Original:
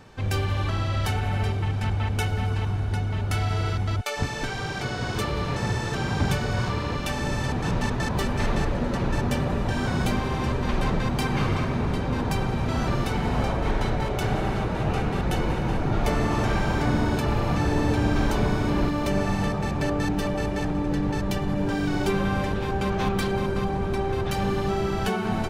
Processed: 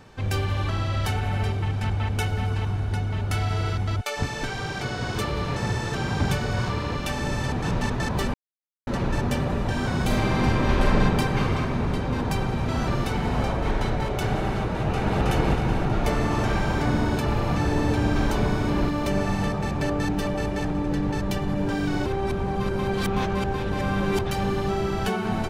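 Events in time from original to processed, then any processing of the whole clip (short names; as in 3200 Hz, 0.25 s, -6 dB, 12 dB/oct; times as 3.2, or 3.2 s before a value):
8.34–8.87 mute
10.05–11.01 reverb throw, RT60 2.3 s, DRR -2.5 dB
14.69–15.23 echo throw 0.32 s, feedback 55%, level 0 dB
22.06–24.19 reverse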